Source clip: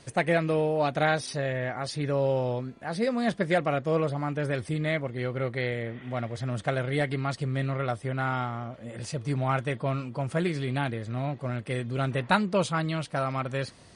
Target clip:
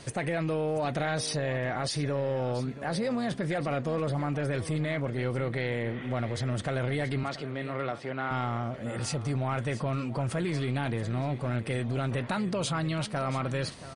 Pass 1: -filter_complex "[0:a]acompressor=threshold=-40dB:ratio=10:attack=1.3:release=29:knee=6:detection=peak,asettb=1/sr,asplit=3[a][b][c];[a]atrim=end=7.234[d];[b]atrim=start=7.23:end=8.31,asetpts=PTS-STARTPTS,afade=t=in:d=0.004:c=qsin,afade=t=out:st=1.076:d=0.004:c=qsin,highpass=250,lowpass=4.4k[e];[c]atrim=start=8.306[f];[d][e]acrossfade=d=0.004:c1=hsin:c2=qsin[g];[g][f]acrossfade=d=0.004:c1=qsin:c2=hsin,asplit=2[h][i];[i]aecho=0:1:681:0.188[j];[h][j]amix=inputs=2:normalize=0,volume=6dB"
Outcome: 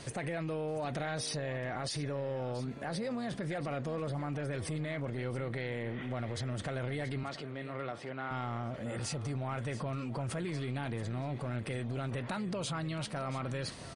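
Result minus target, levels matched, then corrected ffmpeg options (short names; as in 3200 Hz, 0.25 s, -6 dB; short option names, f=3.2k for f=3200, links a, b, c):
compressor: peak gain reduction +6.5 dB
-filter_complex "[0:a]acompressor=threshold=-32.5dB:ratio=10:attack=1.3:release=29:knee=6:detection=peak,asettb=1/sr,asplit=3[a][b][c];[a]atrim=end=7.234[d];[b]atrim=start=7.23:end=8.31,asetpts=PTS-STARTPTS,afade=t=in:d=0.004:c=qsin,afade=t=out:st=1.076:d=0.004:c=qsin,highpass=250,lowpass=4.4k[e];[c]atrim=start=8.306[f];[d][e]acrossfade=d=0.004:c1=hsin:c2=qsin[g];[g][f]acrossfade=d=0.004:c1=qsin:c2=hsin,asplit=2[h][i];[i]aecho=0:1:681:0.188[j];[h][j]amix=inputs=2:normalize=0,volume=6dB"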